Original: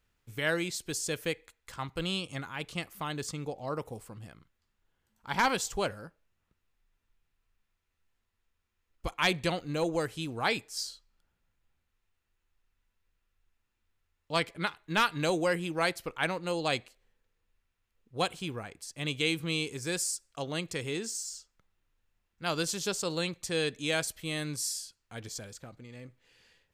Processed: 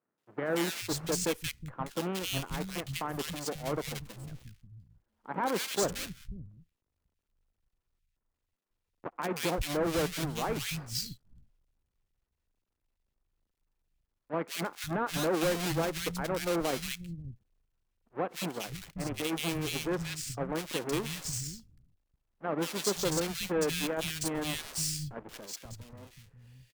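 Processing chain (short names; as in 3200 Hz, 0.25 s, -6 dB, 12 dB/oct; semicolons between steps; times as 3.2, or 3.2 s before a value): half-waves squared off; 19.67–20.26 LPF 3400 Hz 6 dB/oct; limiter -22 dBFS, peak gain reduction 25 dB; added harmonics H 6 -20 dB, 7 -24 dB, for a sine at -22 dBFS; three bands offset in time mids, highs, lows 0.18/0.54 s, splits 170/1800 Hz; gain -1.5 dB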